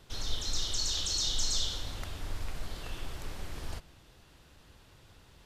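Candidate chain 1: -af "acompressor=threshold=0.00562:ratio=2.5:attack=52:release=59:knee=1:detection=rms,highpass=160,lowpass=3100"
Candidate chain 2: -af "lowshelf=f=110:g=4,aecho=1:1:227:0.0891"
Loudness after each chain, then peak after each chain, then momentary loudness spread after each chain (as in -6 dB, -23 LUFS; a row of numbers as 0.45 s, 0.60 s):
-49.0 LUFS, -34.0 LUFS; -33.0 dBFS, -15.0 dBFS; 17 LU, 13 LU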